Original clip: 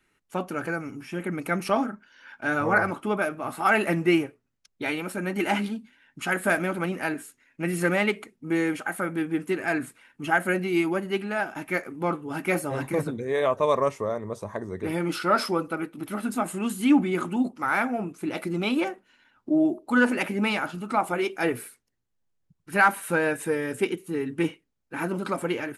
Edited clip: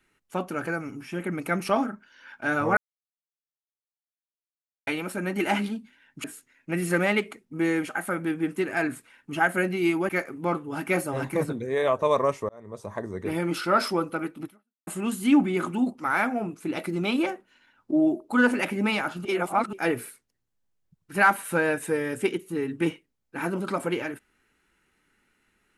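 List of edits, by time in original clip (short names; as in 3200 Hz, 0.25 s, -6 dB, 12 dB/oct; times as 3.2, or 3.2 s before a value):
2.77–4.87 mute
6.24–7.15 cut
11–11.67 cut
14.07–14.54 fade in
16.02–16.45 fade out exponential
20.83–21.31 reverse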